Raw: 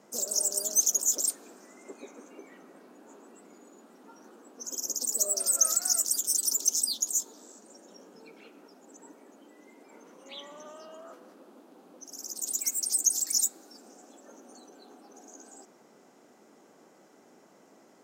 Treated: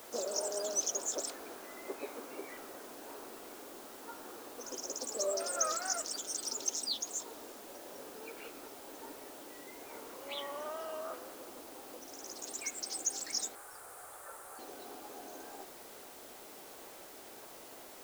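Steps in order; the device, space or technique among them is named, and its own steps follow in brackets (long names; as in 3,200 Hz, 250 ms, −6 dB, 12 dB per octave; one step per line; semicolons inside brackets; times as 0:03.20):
wax cylinder (band-pass filter 400–2,700 Hz; tape wow and flutter; white noise bed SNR 12 dB)
0:13.55–0:14.59: drawn EQ curve 130 Hz 0 dB, 250 Hz −20 dB, 450 Hz −6 dB, 660 Hz −5 dB, 1,300 Hz +6 dB, 2,800 Hz −7 dB, 5,900 Hz −6 dB, 9,000 Hz +7 dB, 14,000 Hz −2 dB
level +6.5 dB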